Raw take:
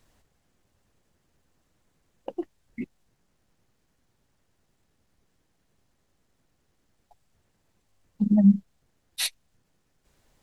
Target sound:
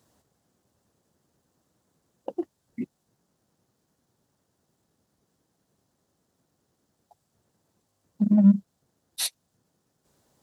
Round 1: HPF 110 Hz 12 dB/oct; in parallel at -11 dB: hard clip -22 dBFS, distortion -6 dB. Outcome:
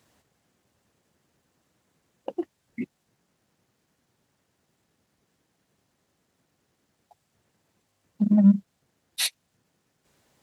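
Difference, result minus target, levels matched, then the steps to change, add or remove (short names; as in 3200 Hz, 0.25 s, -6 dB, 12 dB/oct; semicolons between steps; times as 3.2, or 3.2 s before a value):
2000 Hz band +8.0 dB
add after HPF: bell 2300 Hz -9.5 dB 1.2 oct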